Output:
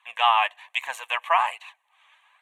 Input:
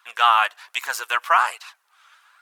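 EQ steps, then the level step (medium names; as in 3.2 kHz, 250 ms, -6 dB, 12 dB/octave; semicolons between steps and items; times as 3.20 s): distance through air 63 m; static phaser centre 1.4 kHz, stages 6; +1.5 dB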